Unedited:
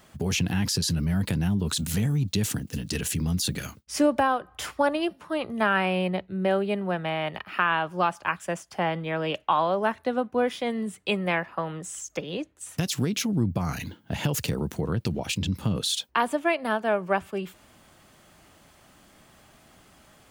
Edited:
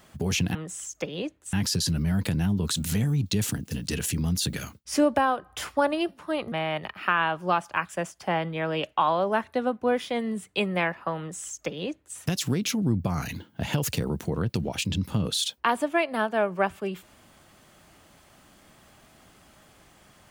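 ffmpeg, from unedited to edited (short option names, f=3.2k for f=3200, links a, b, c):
-filter_complex "[0:a]asplit=4[a][b][c][d];[a]atrim=end=0.552[e];[b]atrim=start=11.698:end=12.682[f];[c]atrim=start=0.548:end=5.542[g];[d]atrim=start=7.028[h];[e][f]acrossfade=d=0.004:c1=hsin:c2=hsin[i];[i][g]acrossfade=d=0.004:c1=hsin:c2=hsin[j];[j][h]acrossfade=d=0.004:c1=hsin:c2=hsin"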